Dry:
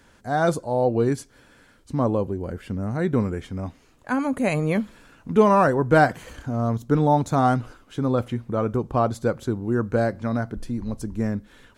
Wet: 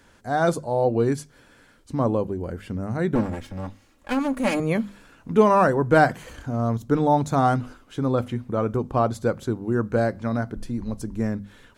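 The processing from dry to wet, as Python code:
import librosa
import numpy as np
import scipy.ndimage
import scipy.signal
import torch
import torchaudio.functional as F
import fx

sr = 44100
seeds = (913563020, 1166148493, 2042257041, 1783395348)

y = fx.lower_of_two(x, sr, delay_ms=3.6, at=(3.15, 4.6))
y = fx.hum_notches(y, sr, base_hz=50, count=5)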